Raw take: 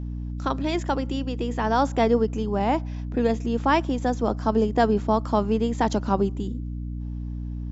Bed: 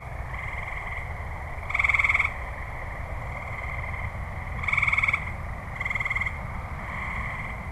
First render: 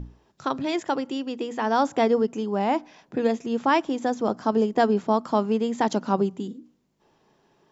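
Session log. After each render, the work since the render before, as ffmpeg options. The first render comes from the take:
ffmpeg -i in.wav -af "bandreject=frequency=60:width_type=h:width=6,bandreject=frequency=120:width_type=h:width=6,bandreject=frequency=180:width_type=h:width=6,bandreject=frequency=240:width_type=h:width=6,bandreject=frequency=300:width_type=h:width=6" out.wav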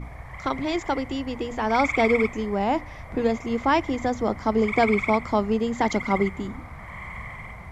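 ffmpeg -i in.wav -i bed.wav -filter_complex "[1:a]volume=-5.5dB[link_01];[0:a][link_01]amix=inputs=2:normalize=0" out.wav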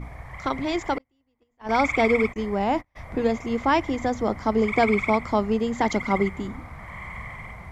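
ffmpeg -i in.wav -filter_complex "[0:a]asettb=1/sr,asplit=3[link_01][link_02][link_03];[link_01]atrim=end=0.984[link_04];[link_02]atrim=start=0.98:end=1.69,asetpts=PTS-STARTPTS,afade=type=in:duration=0.004:curve=qsin,afade=type=out:start_time=0.706:duration=0.004:curve=qsin,agate=range=-41dB:threshold=-23dB:ratio=16:release=100:detection=peak[link_05];[link_03]atrim=start=1.686[link_06];[link_04][link_05]acrossfade=duration=0.004:curve1=hsin:curve2=qsin[link_07];[link_07][link_06]acrossfade=duration=0.004:curve1=qsin:curve2=hsin,asplit=3[link_08][link_09][link_10];[link_08]afade=type=out:start_time=2.32:duration=0.02[link_11];[link_09]agate=range=-35dB:threshold=-33dB:ratio=16:release=100:detection=peak,afade=type=in:start_time=2.32:duration=0.02,afade=type=out:start_time=2.95:duration=0.02[link_12];[link_10]afade=type=in:start_time=2.95:duration=0.02[link_13];[link_11][link_12][link_13]amix=inputs=3:normalize=0" out.wav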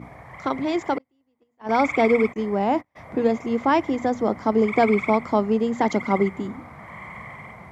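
ffmpeg -i in.wav -af "highpass=160,tiltshelf=frequency=1300:gain=3.5" out.wav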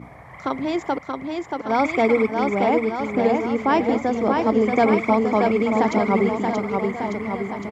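ffmpeg -i in.wav -af "aecho=1:1:630|1197|1707|2167|2580:0.631|0.398|0.251|0.158|0.1" out.wav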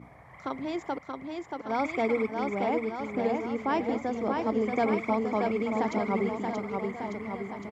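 ffmpeg -i in.wav -af "volume=-9dB" out.wav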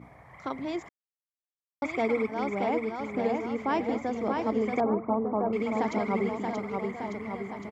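ffmpeg -i in.wav -filter_complex "[0:a]asettb=1/sr,asplit=3[link_01][link_02][link_03];[link_01]atrim=end=4.804[link_04];[link_02]atrim=start=4.8:end=5.53,asetpts=PTS-STARTPTS,afade=type=in:duration=0.004:curve=qsin,afade=type=out:start_time=0.726:duration=0.004:curve=qsin,lowpass=frequency=1200:width=0.5412,lowpass=frequency=1200:width=1.3066[link_05];[link_03]atrim=start=5.526[link_06];[link_04][link_05]acrossfade=duration=0.004:curve1=hsin:curve2=qsin[link_07];[link_07][link_06]acrossfade=duration=0.004:curve1=qsin:curve2=hsin,asplit=3[link_08][link_09][link_10];[link_08]atrim=end=0.89,asetpts=PTS-STARTPTS,afade=type=out:start_time=0.886:duration=0.004:curve=hsin[link_11];[link_09]atrim=start=0.89:end=1.82,asetpts=PTS-STARTPTS,volume=0[link_12];[link_10]atrim=start=1.82,asetpts=PTS-STARTPTS,afade=type=in:duration=0.004:curve=hsin[link_13];[link_11][link_12][link_13]concat=n=3:v=0:a=1" out.wav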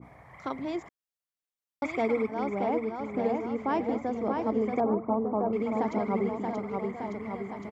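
ffmpeg -i in.wav -af "adynamicequalizer=threshold=0.00562:dfrequency=1500:dqfactor=0.7:tfrequency=1500:tqfactor=0.7:attack=5:release=100:ratio=0.375:range=4:mode=cutabove:tftype=highshelf" out.wav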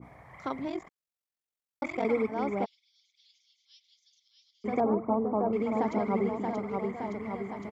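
ffmpeg -i in.wav -filter_complex "[0:a]asettb=1/sr,asplit=3[link_01][link_02][link_03];[link_01]atrim=end=0.684[link_04];[link_02]atrim=start=0.68:end=2.05,asetpts=PTS-STARTPTS,afade=type=in:duration=0.004:curve=qsin,afade=type=out:start_time=1.366:duration=0.004:curve=qsin,aeval=exprs='val(0)*sin(2*PI*22*n/s)':channel_layout=same[link_05];[link_03]atrim=start=2.046[link_06];[link_04][link_05]acrossfade=duration=0.004:curve1=hsin:curve2=qsin[link_07];[link_07][link_06]acrossfade=duration=0.004:curve1=qsin:curve2=hsin,asplit=3[link_08][link_09][link_10];[link_08]afade=type=out:start_time=2.64:duration=0.02[link_11];[link_09]asuperpass=centerf=4600:order=8:qfactor=1.6,afade=type=in:start_time=2.64:duration=0.02,afade=type=out:start_time=4.64:duration=0.02[link_12];[link_10]afade=type=in:start_time=4.64:duration=0.02[link_13];[link_11][link_12][link_13]amix=inputs=3:normalize=0" out.wav

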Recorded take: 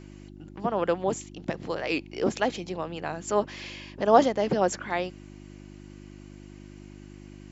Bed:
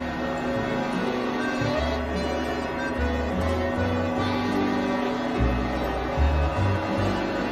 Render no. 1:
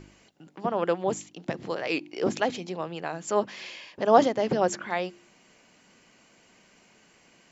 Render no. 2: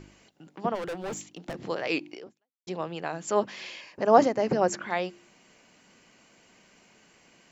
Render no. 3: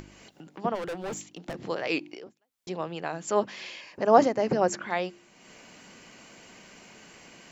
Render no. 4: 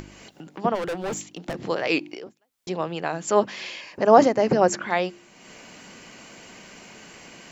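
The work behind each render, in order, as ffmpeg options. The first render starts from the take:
ffmpeg -i in.wav -af "bandreject=frequency=50:width_type=h:width=4,bandreject=frequency=100:width_type=h:width=4,bandreject=frequency=150:width_type=h:width=4,bandreject=frequency=200:width_type=h:width=4,bandreject=frequency=250:width_type=h:width=4,bandreject=frequency=300:width_type=h:width=4,bandreject=frequency=350:width_type=h:width=4" out.wav
ffmpeg -i in.wav -filter_complex "[0:a]asplit=3[link_01][link_02][link_03];[link_01]afade=type=out:start_time=0.74:duration=0.02[link_04];[link_02]volume=31.5dB,asoftclip=hard,volume=-31.5dB,afade=type=in:start_time=0.74:duration=0.02,afade=type=out:start_time=1.56:duration=0.02[link_05];[link_03]afade=type=in:start_time=1.56:duration=0.02[link_06];[link_04][link_05][link_06]amix=inputs=3:normalize=0,asettb=1/sr,asplit=3[link_07][link_08][link_09];[link_07]atrim=end=3.814[link_10];[link_08]atrim=start=3.81:end=4.74,asetpts=PTS-STARTPTS,afade=type=in:duration=0.004:curve=qsin,afade=type=out:start_time=0.926:duration=0.004:curve=qsin,equalizer=frequency=3400:width_type=o:width=0.27:gain=-13.5[link_11];[link_09]atrim=start=4.736[link_12];[link_10][link_11]acrossfade=duration=0.004:curve1=hsin:curve2=qsin[link_13];[link_13][link_12]acrossfade=duration=0.004:curve1=qsin:curve2=hsin,asplit=2[link_14][link_15];[link_14]atrim=end=2.67,asetpts=PTS-STARTPTS,afade=type=out:start_time=2.14:duration=0.53:curve=exp[link_16];[link_15]atrim=start=2.67,asetpts=PTS-STARTPTS,afade=type=in:duration=0.004:curve=hsin[link_17];[link_16][link_17]concat=n=2:v=0:a=1" out.wav
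ffmpeg -i in.wav -af "acompressor=mode=upward:threshold=-41dB:ratio=2.5" out.wav
ffmpeg -i in.wav -af "volume=5.5dB,alimiter=limit=-1dB:level=0:latency=1" out.wav

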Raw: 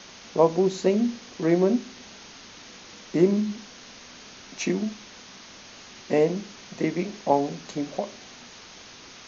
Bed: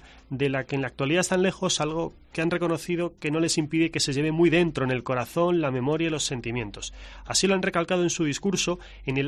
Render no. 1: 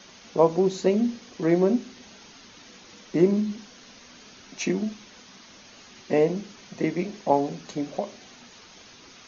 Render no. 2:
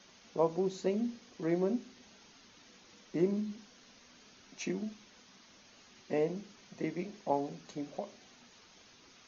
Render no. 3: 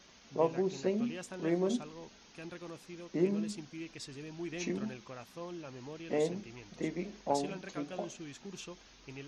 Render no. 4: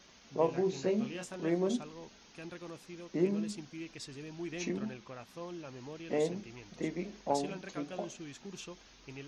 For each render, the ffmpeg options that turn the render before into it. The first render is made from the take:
ffmpeg -i in.wav -af "afftdn=noise_reduction=6:noise_floor=-46" out.wav
ffmpeg -i in.wav -af "volume=-10.5dB" out.wav
ffmpeg -i in.wav -i bed.wav -filter_complex "[1:a]volume=-21dB[link_01];[0:a][link_01]amix=inputs=2:normalize=0" out.wav
ffmpeg -i in.wav -filter_complex "[0:a]asettb=1/sr,asplit=3[link_01][link_02][link_03];[link_01]atrim=end=0.464[link_04];[link_02]atrim=start=0.46:end=1.36,asetpts=PTS-STARTPTS,afade=type=in:duration=0.004:curve=qsin,afade=type=out:start_time=0.896:duration=0.004:curve=qsin,asplit=2[link_05][link_06];[link_06]adelay=23,volume=-5dB[link_07];[link_05][link_07]amix=inputs=2:normalize=0,atrim=end_sample=39690[link_08];[link_03]atrim=start=1.356[link_09];[link_04][link_08]acrossfade=duration=0.004:curve1=hsin:curve2=qsin[link_10];[link_10][link_09]acrossfade=duration=0.004:curve1=qsin:curve2=hsin,asettb=1/sr,asplit=3[link_11][link_12][link_13];[link_11]atrim=end=4.694[link_14];[link_12]atrim=start=4.69:end=5.29,asetpts=PTS-STARTPTS,afade=type=in:duration=0.004:curve=qsin,afade=type=out:start_time=0.596:duration=0.004:curve=qsin,highshelf=frequency=8600:gain=-11[link_15];[link_13]atrim=start=5.286[link_16];[link_14][link_15]acrossfade=duration=0.004:curve1=hsin:curve2=qsin[link_17];[link_17][link_16]acrossfade=duration=0.004:curve1=qsin:curve2=hsin" out.wav

